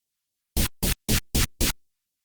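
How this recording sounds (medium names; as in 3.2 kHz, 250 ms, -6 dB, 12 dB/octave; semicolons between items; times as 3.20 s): phasing stages 2, 3.9 Hz, lowest notch 380–1400 Hz; Opus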